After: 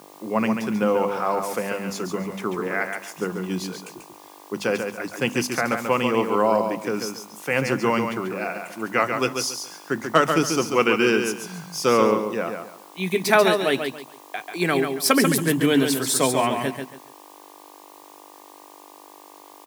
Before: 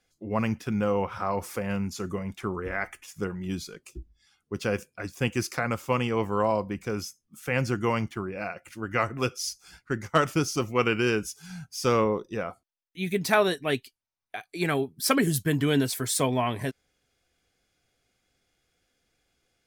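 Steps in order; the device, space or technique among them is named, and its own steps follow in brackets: video cassette with head-switching buzz (mains buzz 50 Hz, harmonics 24, -49 dBFS -3 dB/octave; white noise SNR 29 dB); high-pass 160 Hz 24 dB/octave; hum notches 50/100/150/200/250 Hz; feedback delay 139 ms, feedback 26%, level -6 dB; trim +5 dB

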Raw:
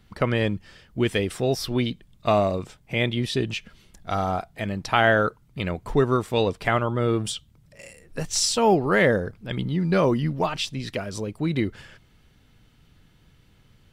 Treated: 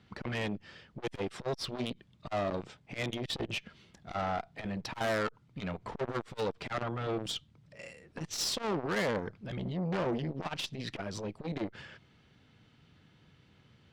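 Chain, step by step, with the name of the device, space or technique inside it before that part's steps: valve radio (band-pass 99–4900 Hz; valve stage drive 26 dB, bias 0.5; transformer saturation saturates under 400 Hz)

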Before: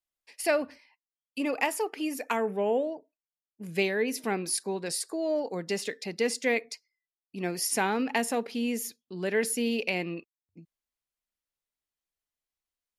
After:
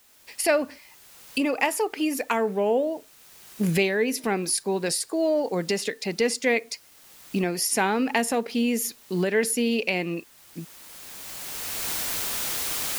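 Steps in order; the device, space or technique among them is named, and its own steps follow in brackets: cheap recorder with automatic gain (white noise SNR 31 dB; recorder AGC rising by 16 dB/s); trim +4 dB

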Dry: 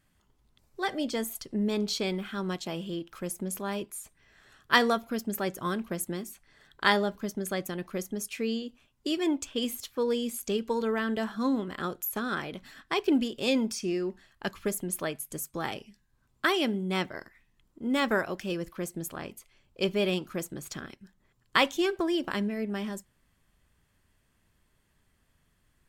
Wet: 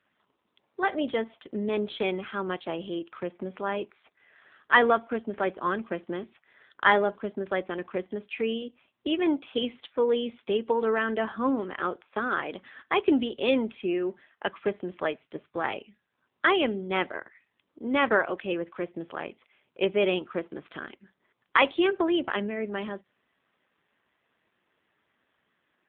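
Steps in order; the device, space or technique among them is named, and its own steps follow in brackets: telephone (band-pass 330–3500 Hz; saturation -10 dBFS, distortion -22 dB; trim +6 dB; AMR-NB 7.4 kbps 8 kHz)

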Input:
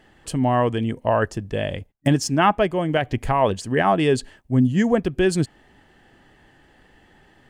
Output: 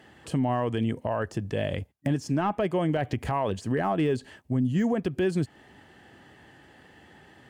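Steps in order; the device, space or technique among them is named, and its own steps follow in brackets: podcast mastering chain (high-pass 69 Hz 24 dB/octave; de-esser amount 95%; compression 2.5:1, threshold -24 dBFS, peak gain reduction 8 dB; peak limiter -19 dBFS, peak gain reduction 7 dB; trim +2 dB; MP3 112 kbps 44.1 kHz)

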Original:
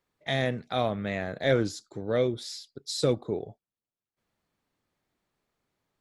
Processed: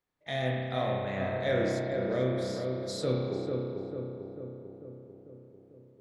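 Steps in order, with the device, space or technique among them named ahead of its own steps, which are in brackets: dub delay into a spring reverb (filtered feedback delay 445 ms, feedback 62%, low-pass 1.4 kHz, level -4 dB; spring tank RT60 1.8 s, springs 31 ms, chirp 60 ms, DRR -2 dB); trim -7.5 dB

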